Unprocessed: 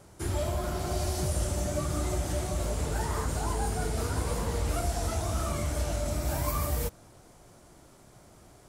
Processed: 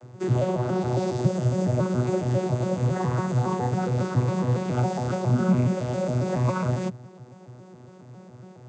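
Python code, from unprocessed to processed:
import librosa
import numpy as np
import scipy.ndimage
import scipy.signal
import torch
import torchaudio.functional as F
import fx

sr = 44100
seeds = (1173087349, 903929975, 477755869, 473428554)

p1 = fx.vocoder_arp(x, sr, chord='bare fifth', root=47, every_ms=138)
p2 = fx.peak_eq(p1, sr, hz=220.0, db=14.0, octaves=0.59, at=(5.29, 5.75))
p3 = fx.rider(p2, sr, range_db=10, speed_s=0.5)
p4 = p2 + (p3 * librosa.db_to_amplitude(-1.5))
y = p4 * librosa.db_to_amplitude(5.0)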